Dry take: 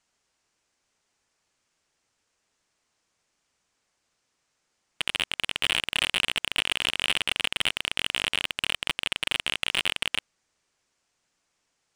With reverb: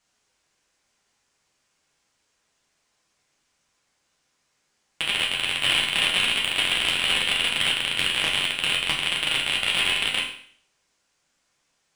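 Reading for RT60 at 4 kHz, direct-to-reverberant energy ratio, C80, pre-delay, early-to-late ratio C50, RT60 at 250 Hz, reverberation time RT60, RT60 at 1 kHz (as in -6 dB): 0.55 s, -2.5 dB, 9.0 dB, 8 ms, 5.5 dB, 0.55 s, 0.55 s, 0.55 s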